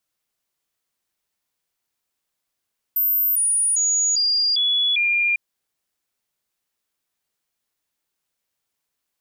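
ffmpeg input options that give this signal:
ffmpeg -f lavfi -i "aevalsrc='0.15*clip(min(mod(t,0.4),0.4-mod(t,0.4))/0.005,0,1)*sin(2*PI*13600*pow(2,-floor(t/0.4)/2)*mod(t,0.4))':duration=2.4:sample_rate=44100" out.wav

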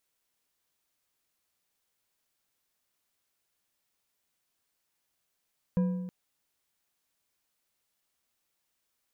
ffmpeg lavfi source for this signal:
ffmpeg -f lavfi -i "aevalsrc='0.0841*pow(10,-3*t/1.24)*sin(2*PI*182*t)+0.0237*pow(10,-3*t/0.915)*sin(2*PI*501.8*t)+0.00668*pow(10,-3*t/0.747)*sin(2*PI*983.5*t)+0.00188*pow(10,-3*t/0.643)*sin(2*PI*1625.8*t)+0.000531*pow(10,-3*t/0.57)*sin(2*PI*2427.9*t)':duration=0.32:sample_rate=44100" out.wav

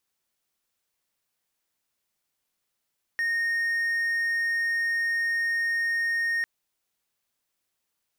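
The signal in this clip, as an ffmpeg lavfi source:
ffmpeg -f lavfi -i "aevalsrc='0.0841*(1-4*abs(mod(1850*t+0.25,1)-0.5))':duration=3.25:sample_rate=44100" out.wav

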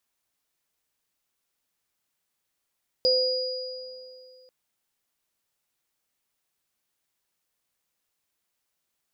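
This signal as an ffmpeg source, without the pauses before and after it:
ffmpeg -f lavfi -i "aevalsrc='0.1*pow(10,-3*t/2.58)*sin(2*PI*511*t)+0.1*pow(10,-3*t/2.19)*sin(2*PI*4890*t)':duration=1.44:sample_rate=44100" out.wav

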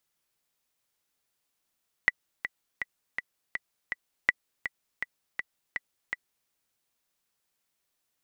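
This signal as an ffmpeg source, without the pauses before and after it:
ffmpeg -f lavfi -i "aevalsrc='pow(10,(-7-10.5*gte(mod(t,6*60/163),60/163))/20)*sin(2*PI*1970*mod(t,60/163))*exp(-6.91*mod(t,60/163)/0.03)':duration=4.41:sample_rate=44100" out.wav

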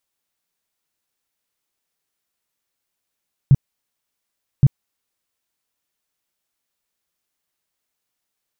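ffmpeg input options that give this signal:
ffmpeg -f lavfi -i "aevalsrc='0.501*sin(2*PI*137*mod(t,1.12))*lt(mod(t,1.12),5/137)':duration=2.24:sample_rate=44100" out.wav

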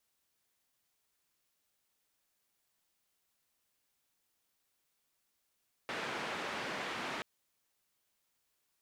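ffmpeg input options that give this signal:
ffmpeg -f lavfi -i "anoisesrc=color=white:duration=1.33:sample_rate=44100:seed=1,highpass=frequency=170,lowpass=frequency=2100,volume=-24.6dB" out.wav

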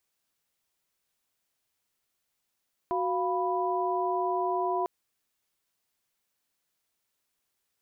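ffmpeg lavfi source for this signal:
ffmpeg -f lavfi -i "aevalsrc='0.0316*(sin(2*PI*369.99*t)+sin(2*PI*698.46*t)+sin(2*PI*987.77*t))':duration=1.95:sample_rate=44100" out.wav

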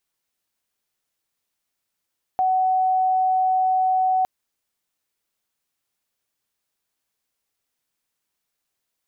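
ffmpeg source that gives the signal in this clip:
ffmpeg -f lavfi -i "sine=frequency=749:duration=1.86:sample_rate=44100,volume=1.56dB" out.wav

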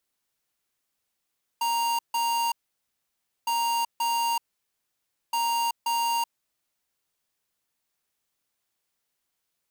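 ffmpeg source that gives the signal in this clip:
ffmpeg -f lavfi -i "aevalsrc='0.0531*(2*lt(mod(933*t,1),0.5)-1)*clip(min(mod(mod(t,1.86),0.53),0.38-mod(mod(t,1.86),0.53))/0.005,0,1)*lt(mod(t,1.86),1.06)':duration=5.58:sample_rate=44100" out.wav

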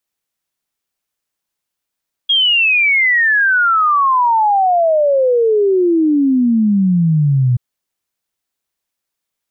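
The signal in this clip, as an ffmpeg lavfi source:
ffmpeg -f lavfi -i "aevalsrc='0.335*clip(min(t,5.28-t)/0.01,0,1)*sin(2*PI*3300*5.28/log(120/3300)*(exp(log(120/3300)*t/5.28)-1))':duration=5.28:sample_rate=44100" out.wav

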